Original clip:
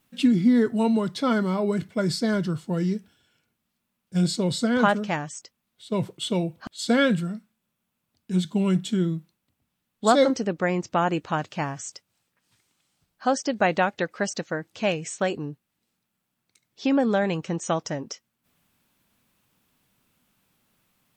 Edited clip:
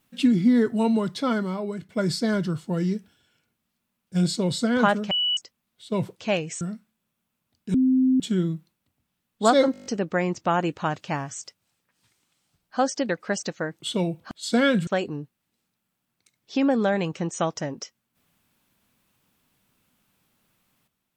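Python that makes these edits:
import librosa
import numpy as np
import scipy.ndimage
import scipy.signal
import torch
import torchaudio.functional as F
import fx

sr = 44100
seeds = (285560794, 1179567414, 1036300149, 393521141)

y = fx.edit(x, sr, fx.fade_out_to(start_s=1.12, length_s=0.77, floor_db=-10.5),
    fx.bleep(start_s=5.11, length_s=0.26, hz=2950.0, db=-20.5),
    fx.swap(start_s=6.16, length_s=1.07, other_s=14.71, other_length_s=0.45),
    fx.bleep(start_s=8.36, length_s=0.46, hz=259.0, db=-16.0),
    fx.stutter(start_s=10.34, slice_s=0.02, count=8),
    fx.cut(start_s=13.57, length_s=0.43), tone=tone)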